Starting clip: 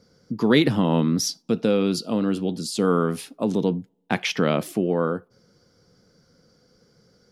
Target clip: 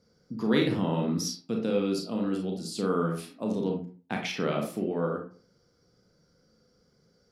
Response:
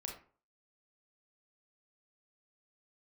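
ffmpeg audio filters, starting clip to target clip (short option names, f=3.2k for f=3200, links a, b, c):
-filter_complex "[1:a]atrim=start_sample=2205,afade=t=out:st=0.39:d=0.01,atrim=end_sample=17640[a];[0:a][a]afir=irnorm=-1:irlink=0,volume=-5dB"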